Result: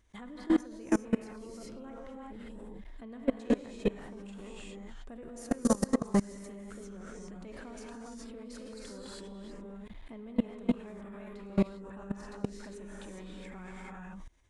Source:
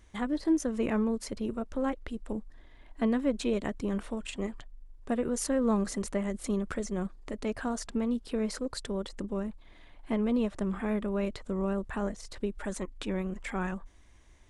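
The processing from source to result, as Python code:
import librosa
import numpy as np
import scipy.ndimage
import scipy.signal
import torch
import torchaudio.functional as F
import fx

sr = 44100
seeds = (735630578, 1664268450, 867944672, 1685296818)

y = fx.rev_gated(x, sr, seeds[0], gate_ms=430, shape='rising', drr_db=-3.0)
y = fx.level_steps(y, sr, step_db=23)
y = y * 10.0 ** (1.0 / 20.0)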